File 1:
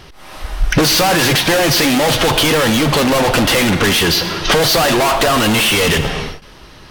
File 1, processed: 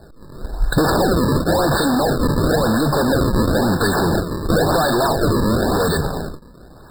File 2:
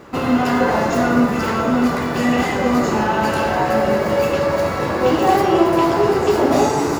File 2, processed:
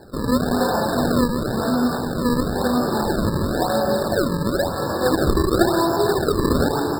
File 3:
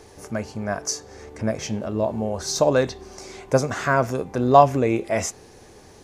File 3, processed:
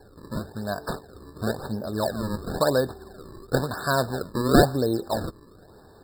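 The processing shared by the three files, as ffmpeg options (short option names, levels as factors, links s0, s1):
-af "acrusher=samples=34:mix=1:aa=0.000001:lfo=1:lforange=54.4:lforate=0.97,afftfilt=real='re*eq(mod(floor(b*sr/1024/1800),2),0)':imag='im*eq(mod(floor(b*sr/1024/1800),2),0)':win_size=1024:overlap=0.75,volume=0.708"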